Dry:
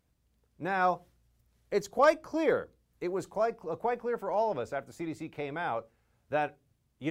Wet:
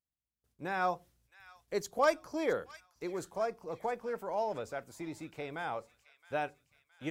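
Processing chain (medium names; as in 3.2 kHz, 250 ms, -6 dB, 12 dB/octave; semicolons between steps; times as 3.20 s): gate with hold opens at -60 dBFS; treble shelf 3.7 kHz +7.5 dB; on a send: feedback echo behind a high-pass 667 ms, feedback 51%, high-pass 1.9 kHz, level -14.5 dB; on the sum: trim -5 dB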